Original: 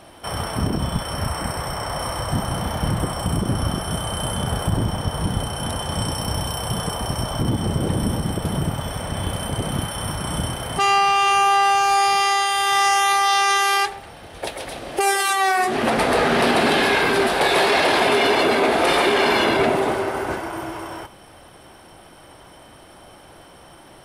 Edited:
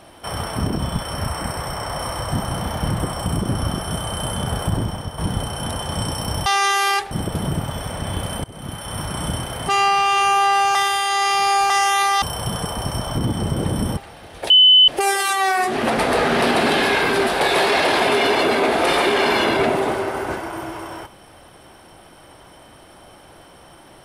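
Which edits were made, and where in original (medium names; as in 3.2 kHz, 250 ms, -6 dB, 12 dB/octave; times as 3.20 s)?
4.73–5.18 s: fade out, to -8 dB
6.46–8.21 s: swap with 13.32–13.97 s
9.54–10.15 s: fade in, from -20.5 dB
11.85–12.80 s: reverse
14.50–14.88 s: bleep 3.02 kHz -7 dBFS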